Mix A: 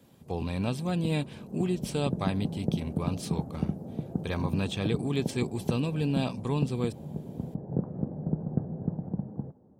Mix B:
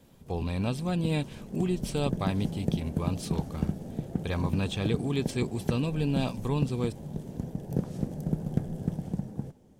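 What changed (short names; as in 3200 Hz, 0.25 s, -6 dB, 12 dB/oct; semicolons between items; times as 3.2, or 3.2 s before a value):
background: remove LPF 1200 Hz 24 dB/oct; master: remove HPF 82 Hz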